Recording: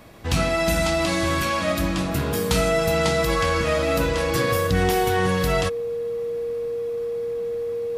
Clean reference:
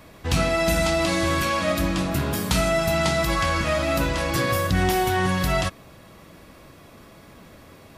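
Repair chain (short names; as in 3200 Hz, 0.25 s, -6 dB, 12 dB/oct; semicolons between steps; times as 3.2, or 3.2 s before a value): de-hum 114.1 Hz, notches 7; notch 470 Hz, Q 30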